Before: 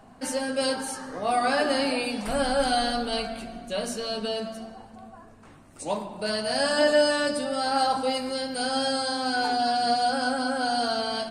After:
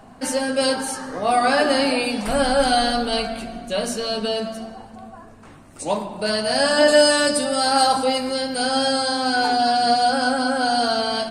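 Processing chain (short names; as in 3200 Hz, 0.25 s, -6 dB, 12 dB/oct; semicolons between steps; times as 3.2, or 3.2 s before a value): 6.88–8.04 high shelf 6200 Hz +11 dB; gain +6 dB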